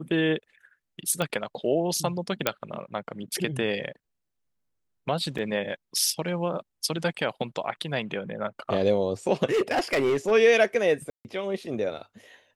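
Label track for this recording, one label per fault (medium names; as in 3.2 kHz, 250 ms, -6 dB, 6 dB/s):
1.220000	1.220000	pop -14 dBFS
2.470000	2.470000	pop -6 dBFS
5.380000	5.380000	dropout 5 ms
9.450000	10.320000	clipped -19.5 dBFS
11.100000	11.250000	dropout 149 ms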